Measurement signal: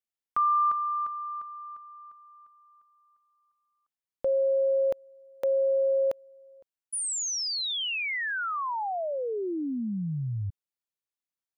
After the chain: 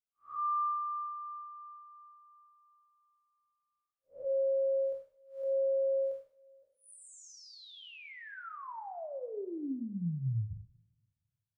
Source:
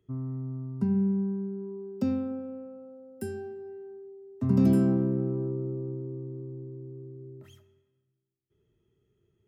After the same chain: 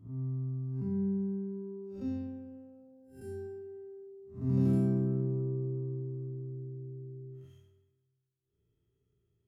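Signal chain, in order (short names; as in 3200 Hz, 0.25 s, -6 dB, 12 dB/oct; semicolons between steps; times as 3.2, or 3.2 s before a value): time blur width 0.16 s; low shelf 110 Hz +8.5 dB; two-slope reverb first 0.54 s, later 1.6 s, from -19 dB, DRR 4.5 dB; gain -8.5 dB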